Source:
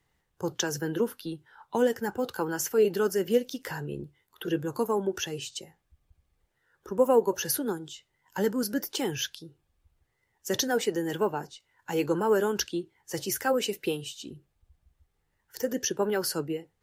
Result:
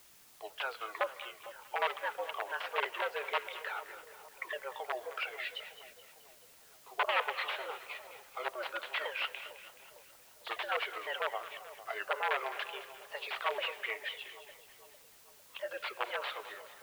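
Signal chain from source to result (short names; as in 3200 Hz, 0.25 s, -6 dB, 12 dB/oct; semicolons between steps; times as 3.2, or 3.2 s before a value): repeated pitch sweeps -10 st, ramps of 0.503 s; tilt shelf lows -5.5 dB, about 1100 Hz; wrapped overs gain 22 dB; mistuned SSB +120 Hz 430–3100 Hz; split-band echo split 1000 Hz, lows 0.453 s, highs 0.213 s, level -13.5 dB; on a send at -16 dB: reverb, pre-delay 77 ms; on the sum: requantised 10-bit, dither triangular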